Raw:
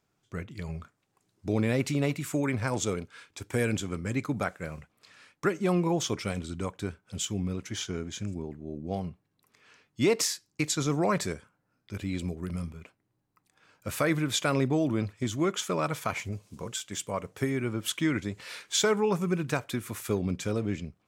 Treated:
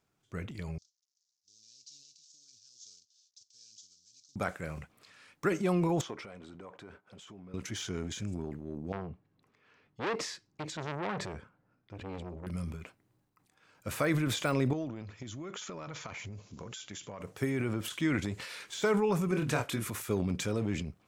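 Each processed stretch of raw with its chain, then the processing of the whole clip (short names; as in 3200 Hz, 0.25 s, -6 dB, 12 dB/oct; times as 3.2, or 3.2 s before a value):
0.78–4.36 CVSD 32 kbps + inverse Chebyshev high-pass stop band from 2200 Hz, stop band 50 dB
6.01–7.54 compressor 5:1, threshold -39 dBFS + sample leveller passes 1 + band-pass 760 Hz, Q 0.65
8.92–12.47 tape spacing loss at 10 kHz 22 dB + core saturation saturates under 1800 Hz
14.73–17.21 compressor 16:1, threshold -35 dBFS + brick-wall FIR low-pass 7400 Hz
19.26–19.87 brick-wall FIR low-pass 14000 Hz + doubler 26 ms -5 dB
whole clip: de-esser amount 80%; transient shaper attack 0 dB, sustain +8 dB; gain -3 dB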